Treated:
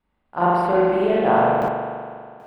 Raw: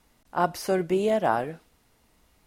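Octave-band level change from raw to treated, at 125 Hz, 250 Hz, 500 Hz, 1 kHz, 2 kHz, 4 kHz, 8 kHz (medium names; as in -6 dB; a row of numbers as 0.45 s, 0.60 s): +7.0 dB, +6.5 dB, +7.5 dB, +9.0 dB, +6.5 dB, +0.5 dB, under -10 dB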